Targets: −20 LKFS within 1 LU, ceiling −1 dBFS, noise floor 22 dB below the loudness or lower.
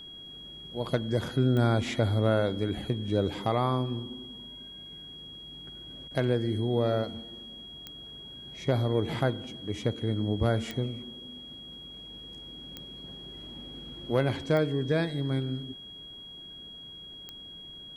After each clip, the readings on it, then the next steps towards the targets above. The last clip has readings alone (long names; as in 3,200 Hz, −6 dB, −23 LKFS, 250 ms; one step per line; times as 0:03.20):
number of clicks 6; interfering tone 3,300 Hz; level of the tone −43 dBFS; integrated loudness −29.5 LKFS; sample peak −13.0 dBFS; target loudness −20.0 LKFS
→ click removal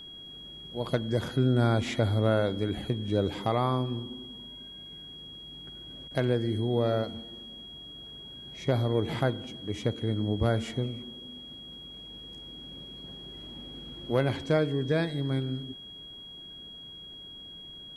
number of clicks 0; interfering tone 3,300 Hz; level of the tone −43 dBFS
→ notch filter 3,300 Hz, Q 30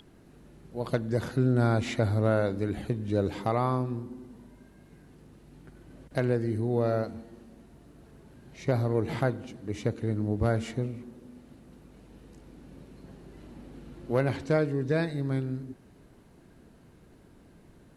interfering tone none found; integrated loudness −29.0 LKFS; sample peak −13.0 dBFS; target loudness −20.0 LKFS
→ level +9 dB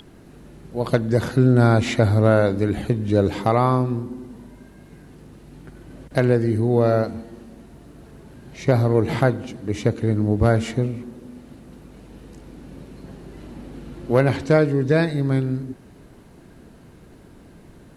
integrated loudness −20.0 LKFS; sample peak −4.0 dBFS; background noise floor −47 dBFS